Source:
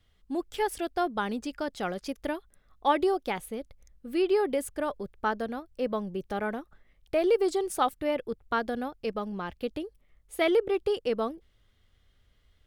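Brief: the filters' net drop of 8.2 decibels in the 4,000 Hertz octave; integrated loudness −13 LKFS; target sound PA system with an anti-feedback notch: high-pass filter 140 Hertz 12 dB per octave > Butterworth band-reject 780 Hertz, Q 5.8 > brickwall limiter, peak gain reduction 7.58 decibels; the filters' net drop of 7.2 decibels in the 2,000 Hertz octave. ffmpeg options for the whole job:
ffmpeg -i in.wav -af "highpass=140,asuperstop=centerf=780:order=8:qfactor=5.8,equalizer=frequency=2000:width_type=o:gain=-8.5,equalizer=frequency=4000:width_type=o:gain=-7.5,volume=20.5dB,alimiter=limit=-2dB:level=0:latency=1" out.wav

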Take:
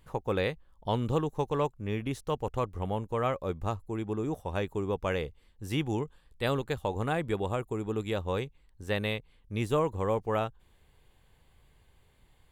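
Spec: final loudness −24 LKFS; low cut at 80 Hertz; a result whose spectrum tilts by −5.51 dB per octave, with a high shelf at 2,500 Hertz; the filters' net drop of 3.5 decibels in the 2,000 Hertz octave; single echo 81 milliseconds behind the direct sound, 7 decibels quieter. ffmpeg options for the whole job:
ffmpeg -i in.wav -af "highpass=80,equalizer=frequency=2000:width_type=o:gain=-8,highshelf=frequency=2500:gain=6.5,aecho=1:1:81:0.447,volume=8dB" out.wav

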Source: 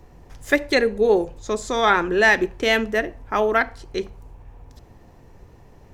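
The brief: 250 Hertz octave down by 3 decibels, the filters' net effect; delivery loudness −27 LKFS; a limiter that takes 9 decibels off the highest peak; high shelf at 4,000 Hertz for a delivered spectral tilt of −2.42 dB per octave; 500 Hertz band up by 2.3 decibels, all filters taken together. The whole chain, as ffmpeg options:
ffmpeg -i in.wav -af "equalizer=frequency=250:width_type=o:gain=-7,equalizer=frequency=500:width_type=o:gain=5,highshelf=frequency=4000:gain=-8.5,volume=-4dB,alimiter=limit=-15.5dB:level=0:latency=1" out.wav

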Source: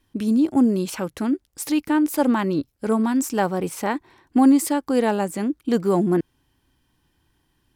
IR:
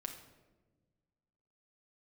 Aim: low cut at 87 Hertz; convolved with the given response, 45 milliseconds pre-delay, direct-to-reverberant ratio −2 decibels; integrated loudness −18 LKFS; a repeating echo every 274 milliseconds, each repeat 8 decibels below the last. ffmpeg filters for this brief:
-filter_complex "[0:a]highpass=87,aecho=1:1:274|548|822|1096|1370:0.398|0.159|0.0637|0.0255|0.0102,asplit=2[link_01][link_02];[1:a]atrim=start_sample=2205,adelay=45[link_03];[link_02][link_03]afir=irnorm=-1:irlink=0,volume=4dB[link_04];[link_01][link_04]amix=inputs=2:normalize=0,volume=-1dB"

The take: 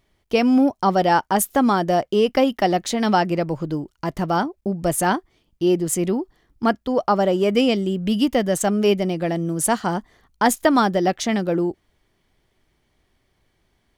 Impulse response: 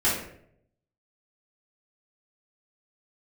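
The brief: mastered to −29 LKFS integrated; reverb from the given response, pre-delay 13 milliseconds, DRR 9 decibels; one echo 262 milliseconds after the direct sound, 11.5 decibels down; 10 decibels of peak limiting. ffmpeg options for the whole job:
-filter_complex "[0:a]alimiter=limit=-12dB:level=0:latency=1,aecho=1:1:262:0.266,asplit=2[link_01][link_02];[1:a]atrim=start_sample=2205,adelay=13[link_03];[link_02][link_03]afir=irnorm=-1:irlink=0,volume=-22.5dB[link_04];[link_01][link_04]amix=inputs=2:normalize=0,volume=-7.5dB"

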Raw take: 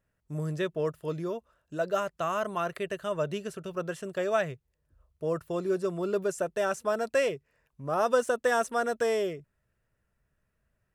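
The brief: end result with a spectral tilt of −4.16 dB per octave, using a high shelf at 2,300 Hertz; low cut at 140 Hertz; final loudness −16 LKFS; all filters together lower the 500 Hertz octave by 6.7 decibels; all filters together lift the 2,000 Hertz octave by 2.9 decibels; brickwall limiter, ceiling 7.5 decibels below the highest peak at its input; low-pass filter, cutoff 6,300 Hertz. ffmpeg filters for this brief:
ffmpeg -i in.wav -af "highpass=140,lowpass=6300,equalizer=frequency=500:width_type=o:gain=-8.5,equalizer=frequency=2000:width_type=o:gain=8,highshelf=frequency=2300:gain=-7,volume=19.5dB,alimiter=limit=-3.5dB:level=0:latency=1" out.wav

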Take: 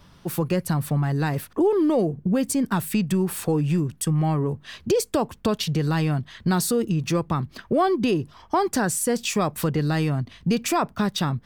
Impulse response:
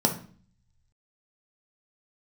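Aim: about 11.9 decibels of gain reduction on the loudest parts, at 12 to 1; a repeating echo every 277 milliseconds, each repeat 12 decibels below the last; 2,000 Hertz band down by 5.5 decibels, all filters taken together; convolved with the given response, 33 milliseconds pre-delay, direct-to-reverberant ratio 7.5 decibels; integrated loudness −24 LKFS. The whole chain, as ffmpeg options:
-filter_complex "[0:a]equalizer=frequency=2000:width_type=o:gain=-8,acompressor=threshold=-30dB:ratio=12,aecho=1:1:277|554|831:0.251|0.0628|0.0157,asplit=2[link_01][link_02];[1:a]atrim=start_sample=2205,adelay=33[link_03];[link_02][link_03]afir=irnorm=-1:irlink=0,volume=-19.5dB[link_04];[link_01][link_04]amix=inputs=2:normalize=0,volume=7dB"

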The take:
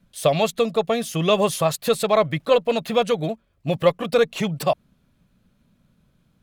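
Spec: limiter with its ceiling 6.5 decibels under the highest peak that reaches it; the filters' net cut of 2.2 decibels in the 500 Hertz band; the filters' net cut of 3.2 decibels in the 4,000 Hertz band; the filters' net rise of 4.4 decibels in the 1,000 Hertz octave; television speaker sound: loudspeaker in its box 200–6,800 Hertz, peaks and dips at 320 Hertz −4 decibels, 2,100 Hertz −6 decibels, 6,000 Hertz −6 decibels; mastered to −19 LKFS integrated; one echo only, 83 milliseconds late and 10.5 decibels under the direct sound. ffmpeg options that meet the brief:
ffmpeg -i in.wav -af "equalizer=frequency=500:width_type=o:gain=-4.5,equalizer=frequency=1000:width_type=o:gain=7.5,equalizer=frequency=4000:width_type=o:gain=-3.5,alimiter=limit=-11dB:level=0:latency=1,highpass=frequency=200:width=0.5412,highpass=frequency=200:width=1.3066,equalizer=frequency=320:width_type=q:width=4:gain=-4,equalizer=frequency=2100:width_type=q:width=4:gain=-6,equalizer=frequency=6000:width_type=q:width=4:gain=-6,lowpass=frequency=6800:width=0.5412,lowpass=frequency=6800:width=1.3066,aecho=1:1:83:0.299,volume=5.5dB" out.wav

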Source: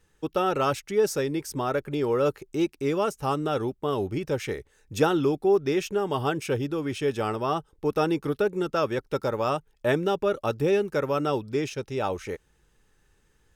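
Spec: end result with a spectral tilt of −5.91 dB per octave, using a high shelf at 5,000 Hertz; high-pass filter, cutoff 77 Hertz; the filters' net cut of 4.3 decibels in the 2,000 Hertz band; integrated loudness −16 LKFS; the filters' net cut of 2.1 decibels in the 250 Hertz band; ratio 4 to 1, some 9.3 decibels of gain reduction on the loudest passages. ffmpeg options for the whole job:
ffmpeg -i in.wav -af "highpass=77,equalizer=frequency=250:width_type=o:gain=-3,equalizer=frequency=2000:width_type=o:gain=-5,highshelf=frequency=5000:gain=-6.5,acompressor=threshold=-29dB:ratio=4,volume=17.5dB" out.wav

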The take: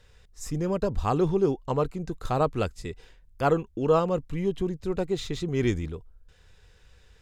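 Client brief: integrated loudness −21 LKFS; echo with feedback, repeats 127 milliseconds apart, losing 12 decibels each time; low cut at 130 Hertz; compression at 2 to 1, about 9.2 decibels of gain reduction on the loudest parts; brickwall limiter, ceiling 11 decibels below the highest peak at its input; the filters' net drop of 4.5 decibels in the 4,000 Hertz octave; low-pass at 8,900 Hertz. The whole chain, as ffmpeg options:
ffmpeg -i in.wav -af "highpass=130,lowpass=8900,equalizer=frequency=4000:width_type=o:gain=-5.5,acompressor=threshold=-35dB:ratio=2,alimiter=level_in=6dB:limit=-24dB:level=0:latency=1,volume=-6dB,aecho=1:1:127|254|381:0.251|0.0628|0.0157,volume=18.5dB" out.wav

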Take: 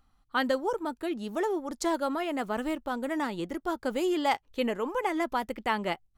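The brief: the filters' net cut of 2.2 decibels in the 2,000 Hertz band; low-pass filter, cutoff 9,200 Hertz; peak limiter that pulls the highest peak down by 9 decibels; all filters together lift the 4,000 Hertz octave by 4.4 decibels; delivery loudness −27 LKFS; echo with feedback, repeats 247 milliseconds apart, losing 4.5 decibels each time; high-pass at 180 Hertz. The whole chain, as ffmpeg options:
ffmpeg -i in.wav -af "highpass=180,lowpass=9200,equalizer=frequency=2000:width_type=o:gain=-4.5,equalizer=frequency=4000:width_type=o:gain=8,alimiter=limit=-22dB:level=0:latency=1,aecho=1:1:247|494|741|988|1235|1482|1729|1976|2223:0.596|0.357|0.214|0.129|0.0772|0.0463|0.0278|0.0167|0.01,volume=4dB" out.wav

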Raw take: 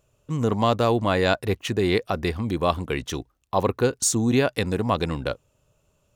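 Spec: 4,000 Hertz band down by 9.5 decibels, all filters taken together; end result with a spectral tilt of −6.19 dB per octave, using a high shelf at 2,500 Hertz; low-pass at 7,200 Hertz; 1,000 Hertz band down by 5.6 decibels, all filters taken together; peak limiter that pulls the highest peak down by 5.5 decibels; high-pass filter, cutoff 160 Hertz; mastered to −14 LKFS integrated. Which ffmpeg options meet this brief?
ffmpeg -i in.wav -af "highpass=160,lowpass=7200,equalizer=frequency=1000:width_type=o:gain=-6,highshelf=frequency=2500:gain=-8,equalizer=frequency=4000:width_type=o:gain=-4.5,volume=14dB,alimiter=limit=-0.5dB:level=0:latency=1" out.wav

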